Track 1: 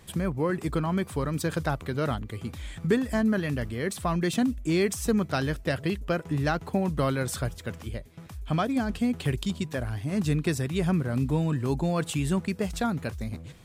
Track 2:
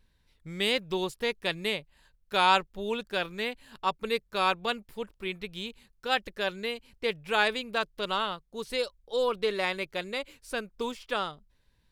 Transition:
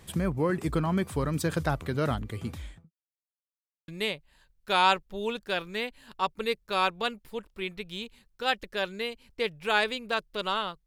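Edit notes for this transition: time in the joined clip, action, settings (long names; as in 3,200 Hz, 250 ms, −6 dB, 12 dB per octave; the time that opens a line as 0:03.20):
track 1
0:02.51–0:02.91: fade out and dull
0:02.91–0:03.88: silence
0:03.88: continue with track 2 from 0:01.52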